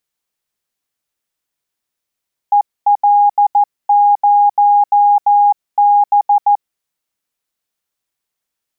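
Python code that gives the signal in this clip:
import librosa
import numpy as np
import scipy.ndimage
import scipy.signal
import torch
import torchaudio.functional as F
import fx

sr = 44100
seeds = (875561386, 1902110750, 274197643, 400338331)

y = fx.morse(sr, text='EL0B', wpm=14, hz=820.0, level_db=-6.5)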